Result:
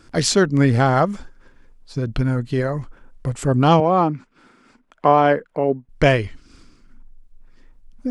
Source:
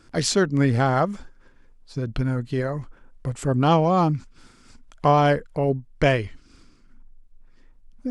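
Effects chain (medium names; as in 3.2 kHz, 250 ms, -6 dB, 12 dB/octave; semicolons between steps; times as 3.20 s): 3.80–5.89 s: three-band isolator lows -22 dB, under 180 Hz, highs -14 dB, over 2.8 kHz; trim +4 dB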